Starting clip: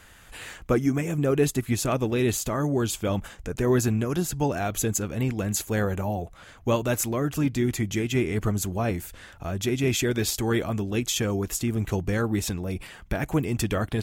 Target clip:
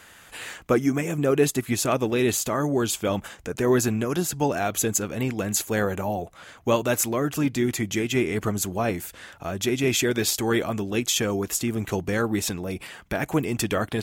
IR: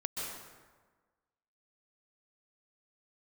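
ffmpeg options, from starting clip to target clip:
-af "highpass=f=230:p=1,volume=1.5"

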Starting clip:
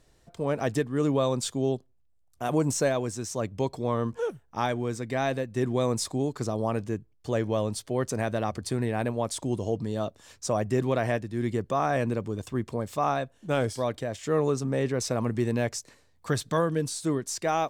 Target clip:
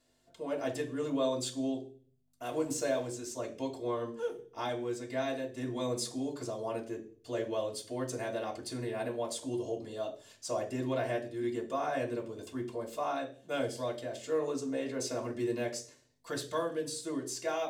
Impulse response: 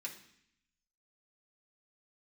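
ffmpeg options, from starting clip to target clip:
-filter_complex "[0:a]aeval=exprs='val(0)+0.00112*(sin(2*PI*50*n/s)+sin(2*PI*2*50*n/s)/2+sin(2*PI*3*50*n/s)/3+sin(2*PI*4*50*n/s)/4+sin(2*PI*5*50*n/s)/5)':c=same[s0];[1:a]atrim=start_sample=2205,asetrate=79380,aresample=44100[s1];[s0][s1]afir=irnorm=-1:irlink=0,asettb=1/sr,asplit=3[s2][s3][s4];[s2]atrim=end=2.434[s5];[s3]atrim=start=2.43:end=3.07,asetpts=PTS-STARTPTS,afade=t=in:d=0.004:c=qsin,afade=t=out:st=0.636:d=0.004:c=qsin,aeval=exprs='sgn(val(0))*max(abs(val(0))-0.00133,0)':c=same[s6];[s4]atrim=start=3.066[s7];[s5][s6]acrossfade=d=0.004:c1=hsin:c2=qsin[s8];[s8][s7]acrossfade=d=0.004:c1=qsin:c2=hsin,volume=1.26"

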